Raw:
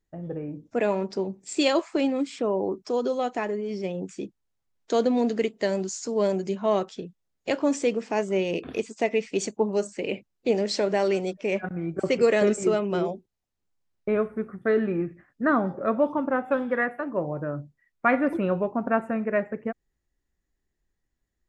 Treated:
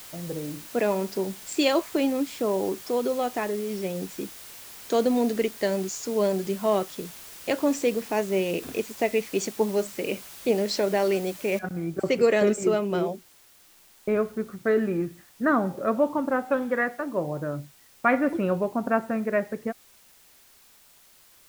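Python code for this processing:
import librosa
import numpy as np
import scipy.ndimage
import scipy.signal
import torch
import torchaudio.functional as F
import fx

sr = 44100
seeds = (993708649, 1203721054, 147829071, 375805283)

y = fx.noise_floor_step(x, sr, seeds[0], at_s=11.59, before_db=-44, after_db=-56, tilt_db=0.0)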